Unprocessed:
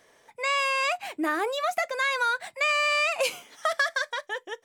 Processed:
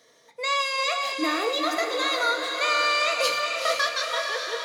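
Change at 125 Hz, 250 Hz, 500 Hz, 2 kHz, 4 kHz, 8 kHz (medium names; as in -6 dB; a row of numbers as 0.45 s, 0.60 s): no reading, +3.0 dB, +2.5 dB, 0.0 dB, +6.5 dB, +4.0 dB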